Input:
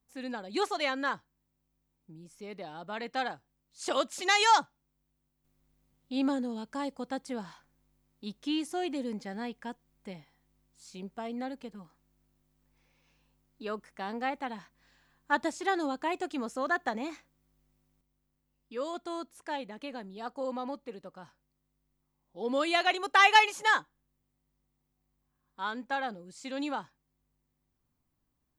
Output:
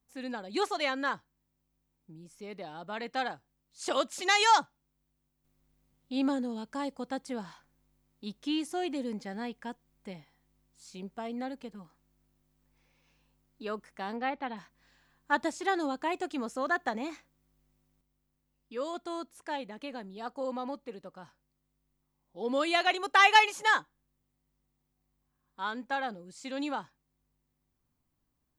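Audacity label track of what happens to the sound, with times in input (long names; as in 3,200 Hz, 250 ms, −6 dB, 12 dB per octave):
14.160000	14.570000	low-pass filter 4,500 Hz 24 dB per octave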